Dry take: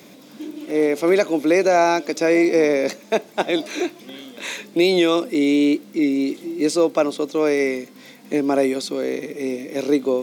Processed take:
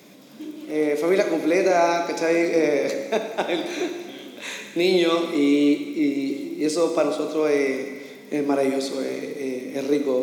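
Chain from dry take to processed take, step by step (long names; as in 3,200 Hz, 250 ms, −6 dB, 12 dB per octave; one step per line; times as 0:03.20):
dense smooth reverb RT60 1.6 s, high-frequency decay 0.95×, DRR 4 dB
level −4 dB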